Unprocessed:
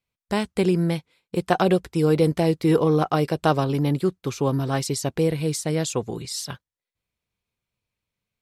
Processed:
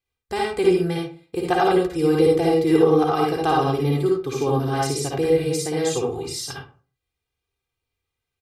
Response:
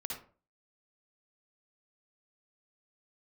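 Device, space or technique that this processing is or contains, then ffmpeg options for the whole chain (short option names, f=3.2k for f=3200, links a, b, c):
microphone above a desk: -filter_complex "[0:a]aecho=1:1:2.5:0.78[a];[1:a]atrim=start_sample=2205[b];[a][b]afir=irnorm=-1:irlink=0"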